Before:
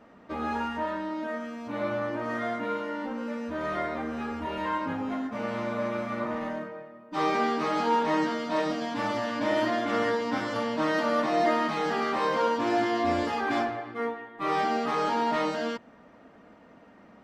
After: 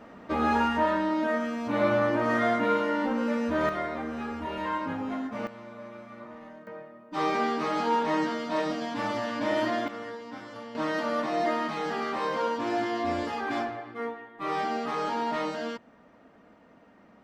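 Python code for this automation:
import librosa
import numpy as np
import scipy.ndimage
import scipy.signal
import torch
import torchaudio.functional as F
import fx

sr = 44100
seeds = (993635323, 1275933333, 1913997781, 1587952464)

y = fx.gain(x, sr, db=fx.steps((0.0, 6.0), (3.69, -1.0), (5.47, -13.0), (6.67, -1.0), (9.88, -12.0), (10.75, -3.0)))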